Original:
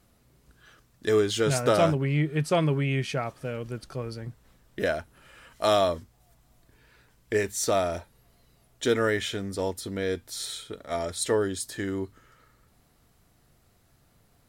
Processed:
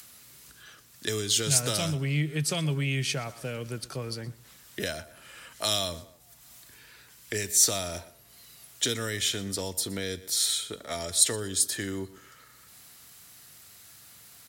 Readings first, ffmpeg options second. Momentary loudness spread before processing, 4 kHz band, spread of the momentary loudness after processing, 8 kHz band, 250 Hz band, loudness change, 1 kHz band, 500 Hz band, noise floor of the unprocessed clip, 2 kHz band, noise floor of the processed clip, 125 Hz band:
13 LU, +6.0 dB, 15 LU, +10.0 dB, -5.0 dB, 0.0 dB, -9.0 dB, -9.5 dB, -64 dBFS, -2.5 dB, -55 dBFS, -2.0 dB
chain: -filter_complex "[0:a]highshelf=f=7.6k:g=-8.5,acrossover=split=690|1000[a][b][c];[c]acompressor=mode=upward:threshold=-54dB:ratio=2.5[d];[a][b][d]amix=inputs=3:normalize=0,highpass=76,asplit=2[e][f];[f]aecho=0:1:120|240:0.1|0.021[g];[e][g]amix=inputs=2:normalize=0,crystalizer=i=4.5:c=0,acrossover=split=180|3000[h][i][j];[i]acompressor=threshold=-33dB:ratio=6[k];[h][k][j]amix=inputs=3:normalize=0"

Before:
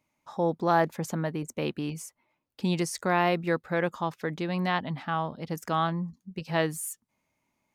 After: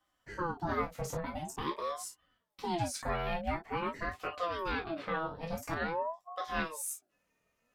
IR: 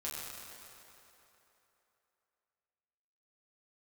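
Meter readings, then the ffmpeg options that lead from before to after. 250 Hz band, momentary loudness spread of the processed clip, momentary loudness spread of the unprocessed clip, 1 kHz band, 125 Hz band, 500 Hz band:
-10.0 dB, 6 LU, 12 LU, -6.0 dB, -10.5 dB, -8.0 dB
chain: -filter_complex "[0:a]acompressor=threshold=-32dB:ratio=3[a];[1:a]atrim=start_sample=2205,atrim=end_sample=4410,asetrate=70560,aresample=44100[b];[a][b]afir=irnorm=-1:irlink=0,aeval=exprs='val(0)*sin(2*PI*610*n/s+610*0.5/0.47*sin(2*PI*0.47*n/s))':c=same,volume=7dB"

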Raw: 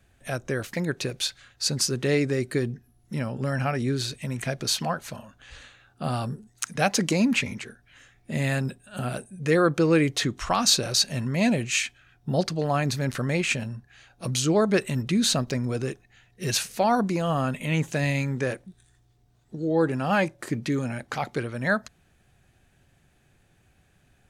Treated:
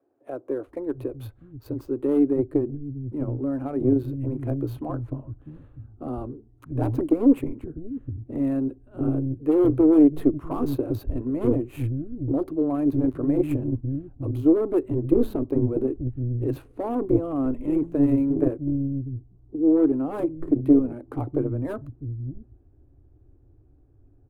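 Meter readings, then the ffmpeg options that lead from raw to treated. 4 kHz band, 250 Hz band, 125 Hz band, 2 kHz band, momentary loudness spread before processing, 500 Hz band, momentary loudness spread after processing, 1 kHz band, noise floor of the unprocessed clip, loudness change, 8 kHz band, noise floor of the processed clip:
under -25 dB, +6.0 dB, -0.5 dB, under -20 dB, 12 LU, +1.5 dB, 15 LU, -9.0 dB, -63 dBFS, +1.5 dB, under -30 dB, -56 dBFS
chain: -filter_complex "[0:a]acrossover=split=4400[a][b];[b]acompressor=threshold=-44dB:ratio=4:attack=1:release=60[c];[a][c]amix=inputs=2:normalize=0,aeval=exprs='0.126*(abs(mod(val(0)/0.126+3,4)-2)-1)':c=same,adynamicsmooth=sensitivity=6.5:basefreq=2.4k,acrossover=split=170[d][e];[d]adelay=650[f];[f][e]amix=inputs=2:normalize=0,asubboost=boost=6.5:cutoff=220,aeval=exprs='0.447*(cos(1*acos(clip(val(0)/0.447,-1,1)))-cos(1*PI/2))+0.178*(cos(2*acos(clip(val(0)/0.447,-1,1)))-cos(2*PI/2))+0.00708*(cos(8*acos(clip(val(0)/0.447,-1,1)))-cos(8*PI/2))':c=same,firequalizer=gain_entry='entry(110,0);entry(190,-21);entry(280,12);entry(770,2);entry(1100,0);entry(1700,-15);entry(5400,-23);entry(9900,-2)':delay=0.05:min_phase=1,volume=-5.5dB"

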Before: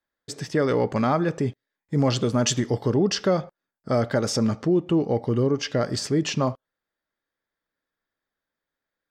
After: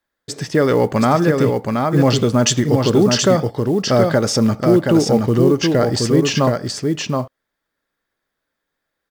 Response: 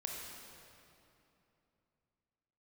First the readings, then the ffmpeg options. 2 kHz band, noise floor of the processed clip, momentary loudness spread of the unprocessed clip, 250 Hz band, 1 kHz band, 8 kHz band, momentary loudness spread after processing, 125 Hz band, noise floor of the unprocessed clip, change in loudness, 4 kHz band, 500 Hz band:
+8.5 dB, -79 dBFS, 7 LU, +8.5 dB, +8.5 dB, +8.5 dB, 7 LU, +8.0 dB, under -85 dBFS, +8.0 dB, +8.5 dB, +8.5 dB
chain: -af "aecho=1:1:724:0.631,acrusher=bits=8:mode=log:mix=0:aa=0.000001,volume=7dB"

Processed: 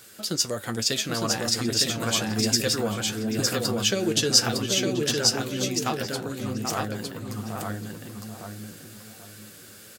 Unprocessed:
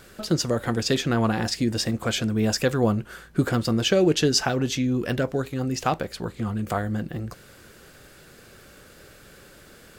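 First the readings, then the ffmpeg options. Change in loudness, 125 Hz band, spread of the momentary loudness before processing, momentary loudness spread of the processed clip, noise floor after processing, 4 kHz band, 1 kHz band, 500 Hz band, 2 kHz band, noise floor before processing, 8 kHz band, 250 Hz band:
0.0 dB, -5.0 dB, 9 LU, 19 LU, -47 dBFS, +5.0 dB, -2.5 dB, -3.5 dB, -0.5 dB, -50 dBFS, +7.5 dB, -4.0 dB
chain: -filter_complex "[0:a]highpass=100,highshelf=f=4.7k:g=6.5,asplit=2[a][b];[b]adelay=784,lowpass=f=940:p=1,volume=-4dB,asplit=2[c][d];[d]adelay=784,lowpass=f=940:p=1,volume=0.35,asplit=2[e][f];[f]adelay=784,lowpass=f=940:p=1,volume=0.35,asplit=2[g][h];[h]adelay=784,lowpass=f=940:p=1,volume=0.35[i];[c][e][g][i]amix=inputs=4:normalize=0[j];[a][j]amix=inputs=2:normalize=0,flanger=delay=8.8:depth=1.8:regen=45:speed=1.2:shape=sinusoidal,highshelf=f=2.3k:g=9,asplit=2[k][l];[l]aecho=0:1:908:0.708[m];[k][m]amix=inputs=2:normalize=0,volume=-3dB"

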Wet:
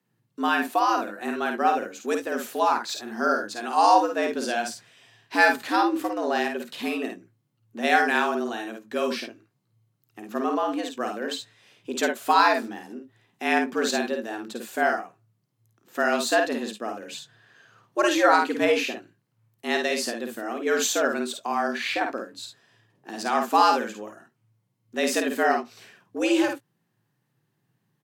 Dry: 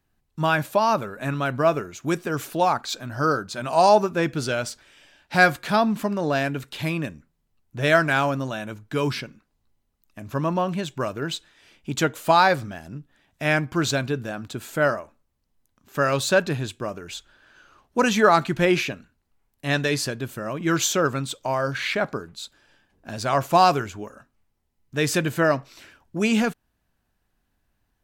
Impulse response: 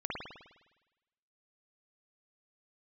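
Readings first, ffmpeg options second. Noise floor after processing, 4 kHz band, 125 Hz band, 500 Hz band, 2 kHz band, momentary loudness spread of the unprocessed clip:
-73 dBFS, -1.5 dB, under -25 dB, -2.5 dB, -1.0 dB, 16 LU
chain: -af "aecho=1:1:52|70:0.562|0.2,afreqshift=110,volume=-3dB"

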